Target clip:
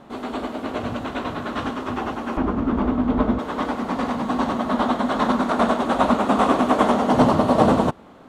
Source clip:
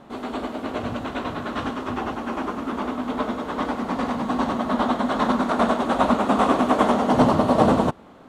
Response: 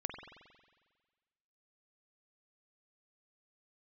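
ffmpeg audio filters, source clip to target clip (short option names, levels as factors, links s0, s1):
-filter_complex "[0:a]asettb=1/sr,asplit=3[s0][s1][s2];[s0]atrim=end=2.374[s3];[s1]atrim=start=2.37:end=3.39,asetpts=PTS-STARTPTS,afade=t=in:d=0.004:c=qsin,afade=t=out:st=1.016:d=0.004:c=qsin,aemphasis=mode=reproduction:type=riaa[s4];[s2]atrim=start=3.386[s5];[s3][s4]acrossfade=d=0.004:c1=hsin:c2=qsin[s6];[s6][s5]acrossfade=d=0.004:c1=qsin:c2=hsin,volume=1.12"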